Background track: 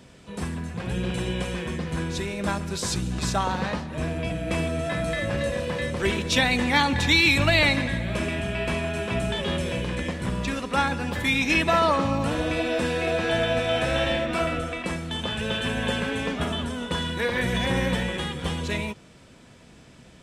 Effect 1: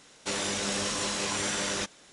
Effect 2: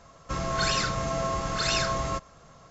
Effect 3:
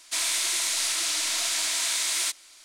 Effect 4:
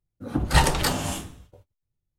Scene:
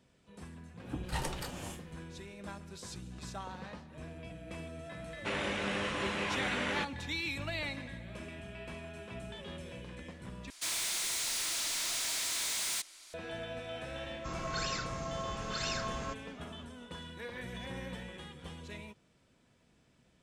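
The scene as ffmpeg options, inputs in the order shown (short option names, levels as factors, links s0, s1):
-filter_complex "[0:a]volume=0.126[s0];[4:a]tremolo=f=2.8:d=0.46[s1];[1:a]highshelf=f=3800:t=q:w=1.5:g=-14[s2];[3:a]volume=31.6,asoftclip=hard,volume=0.0316[s3];[s0]asplit=2[s4][s5];[s4]atrim=end=10.504[s6];[s3]atrim=end=2.64,asetpts=PTS-STARTPTS,volume=0.708[s7];[s5]atrim=start=13.136[s8];[s1]atrim=end=2.18,asetpts=PTS-STARTPTS,volume=0.2,afade=t=in:d=0.004:c=hsin,afade=t=out:st=2.176:d=0.004:c=hsin,adelay=580[s9];[s2]atrim=end=2.12,asetpts=PTS-STARTPTS,volume=0.708,afade=t=in:d=0.004:c=hsin,afade=t=out:st=2.116:d=0.004:c=hsin,adelay=4990[s10];[2:a]atrim=end=2.7,asetpts=PTS-STARTPTS,volume=0.316,afade=t=in:d=0.004:c=hsin,afade=t=out:st=2.696:d=0.004:c=hsin,adelay=13950[s11];[s6][s7]acrossfade=d=0.004:c1=hsin:c2=hsin[s12];[s12][s8]acrossfade=d=0.004:c1=hsin:c2=hsin[s13];[s13][s9][s10][s11]amix=inputs=4:normalize=0"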